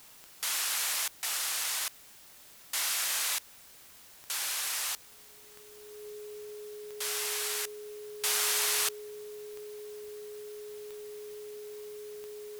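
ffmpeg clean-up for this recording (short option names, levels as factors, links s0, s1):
-af "adeclick=t=4,bandreject=f=420:w=30,afftdn=nr=26:nf=-54"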